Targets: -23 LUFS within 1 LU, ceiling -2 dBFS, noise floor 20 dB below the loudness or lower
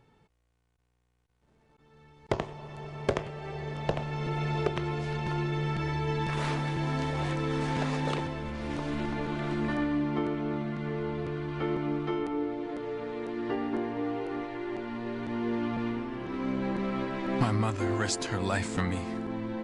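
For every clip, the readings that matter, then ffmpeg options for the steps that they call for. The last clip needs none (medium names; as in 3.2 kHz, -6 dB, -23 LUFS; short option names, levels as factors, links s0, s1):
loudness -32.0 LUFS; peak level -16.5 dBFS; loudness target -23.0 LUFS
-> -af "volume=2.82"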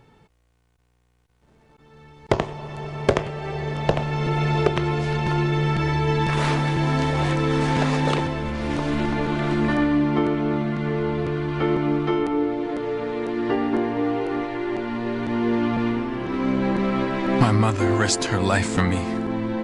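loudness -23.0 LUFS; peak level -7.5 dBFS; noise floor -64 dBFS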